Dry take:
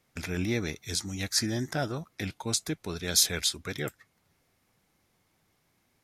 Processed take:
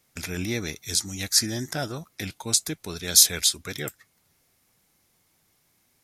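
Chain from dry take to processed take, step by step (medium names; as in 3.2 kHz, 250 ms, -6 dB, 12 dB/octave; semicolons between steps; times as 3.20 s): treble shelf 4.4 kHz +11 dB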